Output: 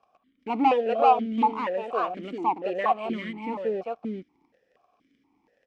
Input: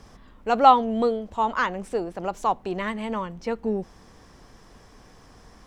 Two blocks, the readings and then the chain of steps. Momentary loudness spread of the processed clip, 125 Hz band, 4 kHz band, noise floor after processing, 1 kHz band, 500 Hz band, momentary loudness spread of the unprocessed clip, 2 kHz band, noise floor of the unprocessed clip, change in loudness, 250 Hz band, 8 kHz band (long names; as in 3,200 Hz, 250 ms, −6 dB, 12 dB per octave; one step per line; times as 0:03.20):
13 LU, −5.5 dB, −5.0 dB, −71 dBFS, −2.0 dB, −0.5 dB, 14 LU, −4.5 dB, −52 dBFS, −2.0 dB, −1.0 dB, below −15 dB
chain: leveller curve on the samples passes 3
single-tap delay 394 ms −4 dB
formant filter that steps through the vowels 4.2 Hz